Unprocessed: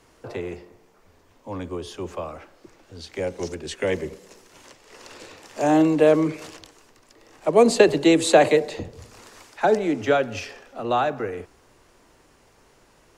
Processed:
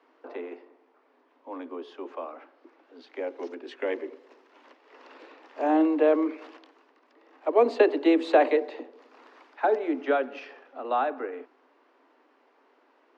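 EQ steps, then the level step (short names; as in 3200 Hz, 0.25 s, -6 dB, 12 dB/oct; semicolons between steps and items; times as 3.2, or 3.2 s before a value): rippled Chebyshev high-pass 250 Hz, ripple 3 dB; air absorption 320 m; notch 360 Hz, Q 12; -1.5 dB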